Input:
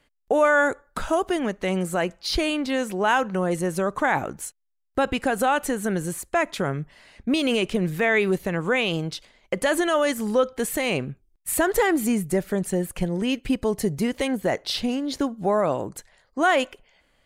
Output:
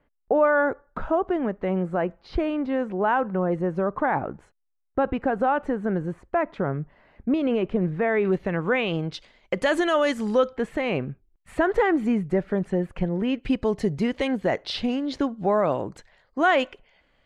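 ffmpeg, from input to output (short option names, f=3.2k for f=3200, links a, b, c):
-af "asetnsamples=n=441:p=0,asendcmd='8.25 lowpass f 2400;9.14 lowpass f 4900;10.56 lowpass f 2100;13.43 lowpass f 3800',lowpass=1.3k"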